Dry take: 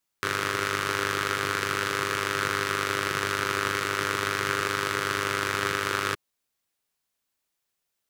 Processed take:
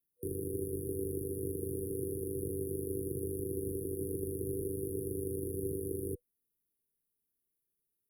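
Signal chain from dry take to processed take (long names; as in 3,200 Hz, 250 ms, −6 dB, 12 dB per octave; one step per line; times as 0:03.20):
brick-wall band-stop 500–9,300 Hz
frequency shifter −13 Hz
level −2 dB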